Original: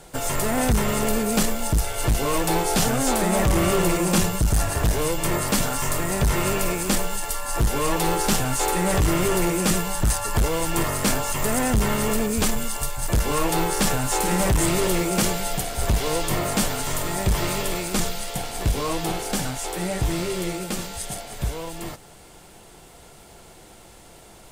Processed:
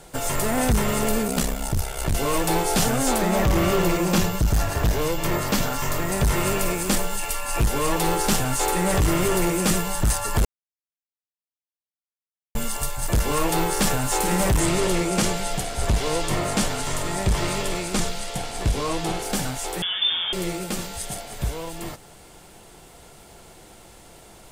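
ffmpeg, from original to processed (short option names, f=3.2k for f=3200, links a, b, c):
-filter_complex "[0:a]asettb=1/sr,asplit=3[a][b][c];[a]atrim=end=1.274[d];[b]atrim=start=1.27:end=2.14,asetpts=PTS-STARTPTS,afade=t=in:d=0.004:c=qsin,afade=t=out:st=0.866:d=0.004:c=qsin,aeval=exprs='val(0)*sin(2*PI*33*n/s)':c=same[e];[c]atrim=start=2.136[f];[d][e]acrossfade=d=0.004:c1=hsin:c2=qsin[g];[g][f]acrossfade=d=0.004:c1=qsin:c2=hsin,asettb=1/sr,asplit=3[h][i][j];[h]atrim=end=3.184[k];[i]atrim=start=3.18:end=6.12,asetpts=PTS-STARTPTS,afade=t=in:d=0.004:c=qsin,afade=t=out:st=2.936:d=0.004:c=qsin,equalizer=f=9.3k:w=2.1:g=-9.5[l];[j]atrim=start=6.116[m];[k][l]acrossfade=d=0.004:c1=hsin:c2=qsin[n];[n][m]acrossfade=d=0.004:c1=qsin:c2=hsin,asettb=1/sr,asplit=3[o][p][q];[o]atrim=end=7.194[r];[p]atrim=start=7.19:end=7.64,asetpts=PTS-STARTPTS,afade=t=in:d=0.004:c=qsin,afade=t=out:st=0.446:d=0.004:c=qsin,equalizer=f=2.5k:w=5.7:g=12.5[s];[q]atrim=start=7.636[t];[r][s]acrossfade=d=0.004:c1=hsin:c2=qsin[u];[u][t]acrossfade=d=0.004:c1=qsin:c2=hsin,asettb=1/sr,asplit=3[v][w][x];[v]atrim=end=14.604[y];[w]atrim=start=14.6:end=19.22,asetpts=PTS-STARTPTS,afade=t=in:d=0.004:c=qsin,afade=t=out:st=4.616:d=0.004:c=qsin,lowpass=10k[z];[x]atrim=start=19.216[aa];[y][z]acrossfade=d=0.004:c1=hsin:c2=qsin[ab];[ab][aa]acrossfade=d=0.004:c1=qsin:c2=hsin,asettb=1/sr,asplit=3[ac][ad][ae];[ac]atrim=end=19.824[af];[ad]atrim=start=19.82:end=20.33,asetpts=PTS-STARTPTS,afade=t=in:d=0.004:c=qsin,afade=t=out:st=0.506:d=0.004:c=qsin,lowpass=f=3.1k:t=q:w=0.5098,lowpass=f=3.1k:t=q:w=0.6013,lowpass=f=3.1k:t=q:w=0.9,lowpass=f=3.1k:t=q:w=2.563,afreqshift=-3600[ag];[ae]atrim=start=20.326[ah];[af][ag]acrossfade=d=0.004:c1=hsin:c2=qsin[ai];[ai][ah]acrossfade=d=0.004:c1=qsin:c2=hsin,asplit=3[aj][ak][al];[aj]atrim=end=10.45,asetpts=PTS-STARTPTS,afade=t=out:st=10.446:d=0.004:c=hsin[am];[ak]atrim=start=10.45:end=12.55,asetpts=PTS-STARTPTS,volume=0[an];[al]atrim=start=12.55,asetpts=PTS-STARTPTS,afade=t=in:d=0.004:c=hsin[ao];[am][an][ao]concat=n=3:v=0:a=1"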